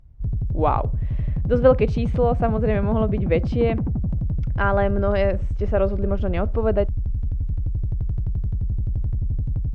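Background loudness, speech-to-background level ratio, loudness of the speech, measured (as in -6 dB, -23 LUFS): -26.5 LUFS, 3.5 dB, -23.0 LUFS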